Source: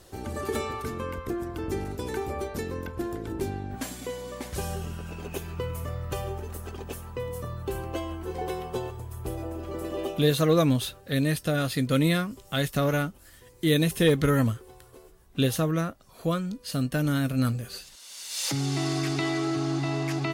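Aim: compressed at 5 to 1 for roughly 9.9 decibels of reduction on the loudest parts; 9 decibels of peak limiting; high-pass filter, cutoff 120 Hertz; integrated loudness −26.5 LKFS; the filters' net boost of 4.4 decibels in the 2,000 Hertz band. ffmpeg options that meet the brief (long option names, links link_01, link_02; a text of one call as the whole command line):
ffmpeg -i in.wav -af "highpass=120,equalizer=frequency=2000:width_type=o:gain=5.5,acompressor=threshold=-28dB:ratio=5,volume=8.5dB,alimiter=limit=-15dB:level=0:latency=1" out.wav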